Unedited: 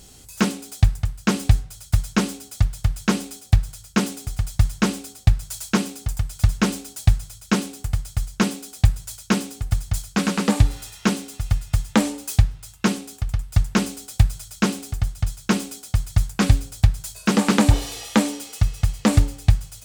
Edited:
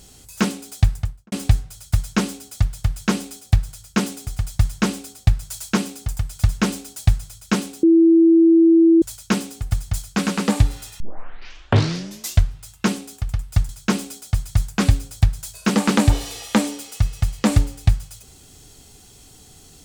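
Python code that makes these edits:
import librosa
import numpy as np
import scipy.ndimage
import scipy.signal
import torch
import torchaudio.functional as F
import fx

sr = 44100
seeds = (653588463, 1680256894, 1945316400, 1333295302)

y = fx.studio_fade_out(x, sr, start_s=0.98, length_s=0.34)
y = fx.edit(y, sr, fx.bleep(start_s=7.83, length_s=1.19, hz=330.0, db=-9.0),
    fx.tape_start(start_s=11.0, length_s=1.58),
    fx.cut(start_s=13.69, length_s=1.61), tone=tone)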